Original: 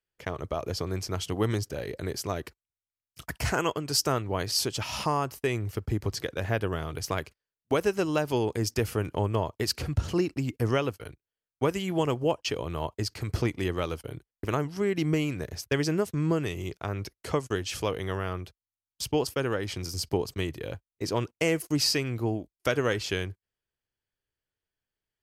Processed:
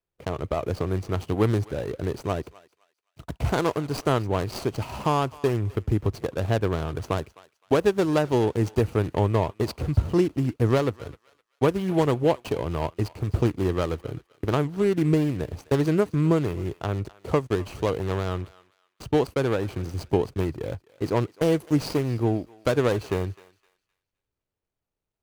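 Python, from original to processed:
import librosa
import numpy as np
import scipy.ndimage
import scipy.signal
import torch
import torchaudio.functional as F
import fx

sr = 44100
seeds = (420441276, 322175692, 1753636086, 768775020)

y = scipy.ndimage.median_filter(x, 25, mode='constant')
y = fx.peak_eq(y, sr, hz=10000.0, db=2.0, octaves=0.77)
y = fx.echo_thinned(y, sr, ms=258, feedback_pct=30, hz=1100.0, wet_db=-17.5)
y = y * librosa.db_to_amplitude(5.5)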